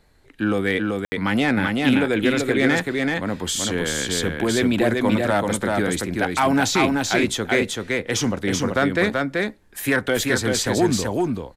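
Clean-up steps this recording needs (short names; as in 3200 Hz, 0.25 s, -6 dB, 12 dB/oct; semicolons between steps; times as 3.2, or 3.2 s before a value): room tone fill 1.05–1.12; inverse comb 0.383 s -3 dB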